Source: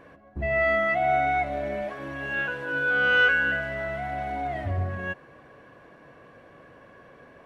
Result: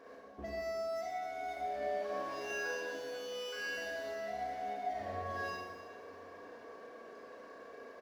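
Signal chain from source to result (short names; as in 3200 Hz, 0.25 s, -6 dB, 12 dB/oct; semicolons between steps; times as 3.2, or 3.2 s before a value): median filter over 15 samples; HPF 48 Hz 12 dB/oct; resonant low shelf 250 Hz -11.5 dB, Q 1.5; comb 4.4 ms, depth 48%; dynamic EQ 1400 Hz, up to -3 dB, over -38 dBFS, Q 2.1; compressor 12:1, threshold -35 dBFS, peak gain reduction 17.5 dB; tempo 0.93×; outdoor echo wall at 170 m, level -22 dB; Schroeder reverb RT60 1.4 s, combs from 30 ms, DRR -4 dB; gain -6.5 dB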